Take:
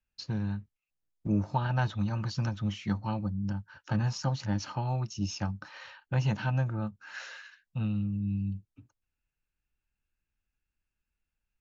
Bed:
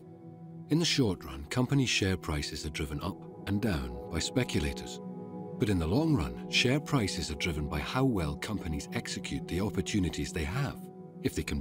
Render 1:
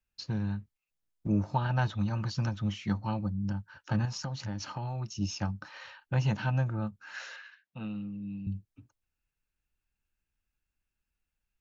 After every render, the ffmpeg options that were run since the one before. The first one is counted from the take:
-filter_complex "[0:a]asettb=1/sr,asplit=3[a][b][c];[a]atrim=end=4.054[d];[b]atrim=start=4.05:end=5.07,asetpts=PTS-STARTPTS,afade=t=in:d=0.004:c=qsin,afade=t=out:st=1.016:d=0.004:c=qsin,acompressor=threshold=-31dB:ratio=6:attack=3.2:release=140:knee=1:detection=peak[e];[c]atrim=start=5.066[f];[d][e]acrossfade=d=0.004:c1=hsin:c2=qsin[g];[g][f]acrossfade=d=0.004:c1=qsin:c2=hsin,asettb=1/sr,asplit=3[h][i][j];[h]atrim=end=7.364[k];[i]atrim=start=7.36:end=8.47,asetpts=PTS-STARTPTS,afade=t=in:d=0.004:c=qsin,afade=t=out:st=1.106:d=0.004:c=qsin,highpass=240,lowpass=3.8k[l];[j]atrim=start=8.466[m];[k][l]acrossfade=d=0.004:c1=hsin:c2=qsin[n];[n][m]acrossfade=d=0.004:c1=qsin:c2=hsin"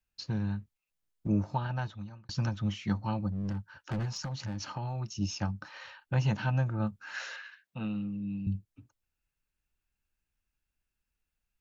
-filter_complex "[0:a]asettb=1/sr,asplit=3[a][b][c];[a]atrim=end=3.324[d];[b]atrim=start=3.32:end=4.67,asetpts=PTS-STARTPTS,afade=t=in:d=0.004:c=qsin,afade=t=out:st=1.346:d=0.004:c=qsin,volume=29.5dB,asoftclip=hard,volume=-29.5dB[e];[c]atrim=start=4.666[f];[d][e]acrossfade=d=0.004:c1=hsin:c2=qsin[g];[g][f]acrossfade=d=0.004:c1=qsin:c2=hsin,asplit=4[h][i][j][k];[h]atrim=end=2.29,asetpts=PTS-STARTPTS,afade=t=out:st=1.31:d=0.98[l];[i]atrim=start=2.29:end=6.802,asetpts=PTS-STARTPTS,afade=t=in:d=0.004:c=hsin[m];[j]atrim=start=6.798:end=8.562,asetpts=PTS-STARTPTS,volume=3dB[n];[k]atrim=start=8.558[o];[l][m]concat=n=2:v=0:a=1[p];[p][n]acrossfade=d=0.004:c1=hsin:c2=hsin[q];[q][o]acrossfade=d=0.004:c1=hsin:c2=hsin"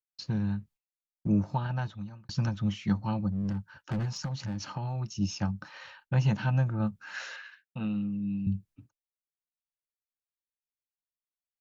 -af "agate=range=-33dB:threshold=-53dB:ratio=3:detection=peak,equalizer=f=170:w=1.9:g=5.5"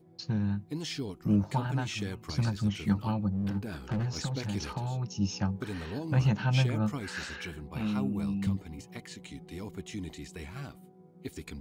-filter_complex "[1:a]volume=-9dB[a];[0:a][a]amix=inputs=2:normalize=0"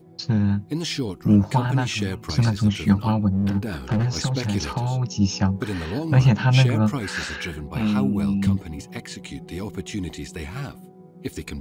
-af "volume=9.5dB"

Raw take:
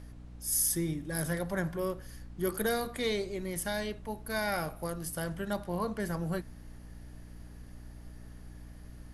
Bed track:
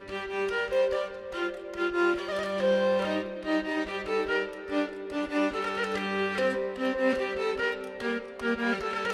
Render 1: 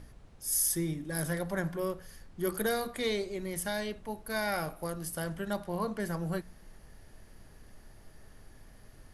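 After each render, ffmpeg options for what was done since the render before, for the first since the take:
-af "bandreject=f=60:t=h:w=4,bandreject=f=120:t=h:w=4,bandreject=f=180:t=h:w=4,bandreject=f=240:t=h:w=4,bandreject=f=300:t=h:w=4"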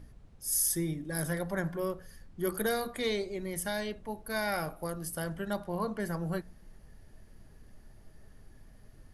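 -af "afftdn=nr=6:nf=-55"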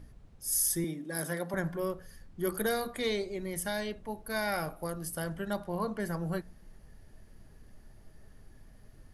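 -filter_complex "[0:a]asettb=1/sr,asplit=3[a][b][c];[a]atrim=end=0.844[d];[b]atrim=start=0.84:end=1.54,asetpts=PTS-STARTPTS,afade=t=in:d=0.004:c=qsin,afade=t=out:st=0.696:d=0.004:c=qsin,highpass=f=180:w=0.5412,highpass=f=180:w=1.3066[e];[c]atrim=start=1.536[f];[d][e]acrossfade=d=0.004:c1=hsin:c2=qsin[g];[g][f]acrossfade=d=0.004:c1=qsin:c2=hsin"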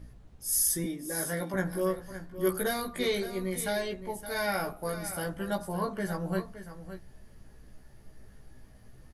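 -filter_complex "[0:a]asplit=2[a][b];[b]adelay=16,volume=-2dB[c];[a][c]amix=inputs=2:normalize=0,aecho=1:1:567:0.251"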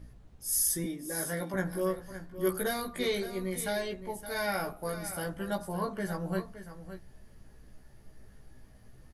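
-af "volume=-1.5dB"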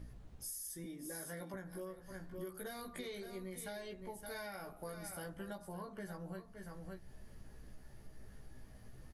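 -af "alimiter=limit=-23.5dB:level=0:latency=1:release=432,acompressor=threshold=-45dB:ratio=4"

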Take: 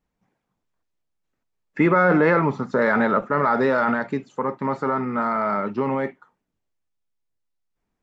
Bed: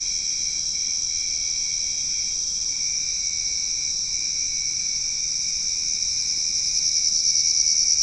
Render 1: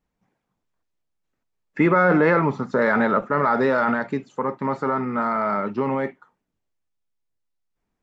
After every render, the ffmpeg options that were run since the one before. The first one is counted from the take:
-af anull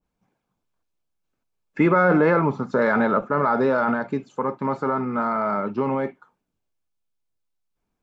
-af "bandreject=f=1.9k:w=7.7,adynamicequalizer=threshold=0.0224:dfrequency=1600:dqfactor=0.7:tfrequency=1600:tqfactor=0.7:attack=5:release=100:ratio=0.375:range=2.5:mode=cutabove:tftype=highshelf"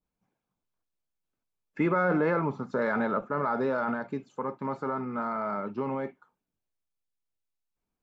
-af "volume=-8dB"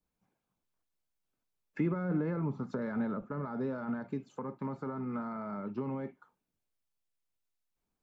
-filter_complex "[0:a]acrossover=split=290[a][b];[b]acompressor=threshold=-40dB:ratio=10[c];[a][c]amix=inputs=2:normalize=0"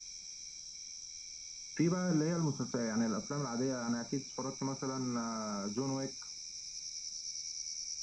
-filter_complex "[1:a]volume=-22.5dB[a];[0:a][a]amix=inputs=2:normalize=0"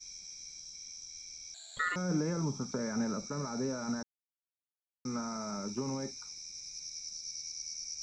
-filter_complex "[0:a]asettb=1/sr,asplit=3[a][b][c];[a]atrim=end=1.544[d];[b]atrim=start=1.54:end=1.96,asetpts=PTS-STARTPTS,afade=t=in:d=0.004:c=qsin,afade=t=out:st=0.416:d=0.004:c=qsin,aeval=exprs='val(0)*sin(2*PI*1600*n/s)':c=same[e];[c]atrim=start=1.956[f];[d][e]acrossfade=d=0.004:c1=hsin:c2=qsin[g];[g][f]acrossfade=d=0.004:c1=qsin:c2=hsin,asplit=3[h][i][j];[h]atrim=end=4.03,asetpts=PTS-STARTPTS,afade=t=out:st=4.026:d=0.004:c=hsin[k];[i]atrim=start=4.03:end=5.05,asetpts=PTS-STARTPTS,volume=0[l];[j]atrim=start=5.05,asetpts=PTS-STARTPTS,afade=t=in:d=0.004:c=hsin[m];[k][l][m]concat=n=3:v=0:a=1"

